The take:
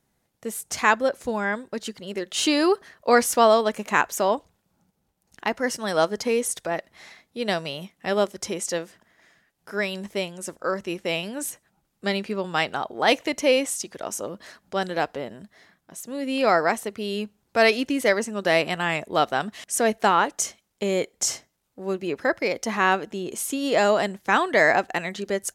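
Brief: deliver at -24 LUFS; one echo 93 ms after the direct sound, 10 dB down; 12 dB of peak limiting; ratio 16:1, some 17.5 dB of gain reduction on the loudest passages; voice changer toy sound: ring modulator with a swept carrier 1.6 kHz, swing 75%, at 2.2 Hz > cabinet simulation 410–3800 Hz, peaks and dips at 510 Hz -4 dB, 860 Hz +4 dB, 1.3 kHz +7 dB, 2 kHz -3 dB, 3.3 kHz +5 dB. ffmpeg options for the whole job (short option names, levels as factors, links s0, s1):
-af "acompressor=threshold=0.0355:ratio=16,alimiter=limit=0.0631:level=0:latency=1,aecho=1:1:93:0.316,aeval=exprs='val(0)*sin(2*PI*1600*n/s+1600*0.75/2.2*sin(2*PI*2.2*n/s))':c=same,highpass=410,equalizer=f=510:t=q:w=4:g=-4,equalizer=f=860:t=q:w=4:g=4,equalizer=f=1300:t=q:w=4:g=7,equalizer=f=2000:t=q:w=4:g=-3,equalizer=f=3300:t=q:w=4:g=5,lowpass=f=3800:w=0.5412,lowpass=f=3800:w=1.3066,volume=3.98"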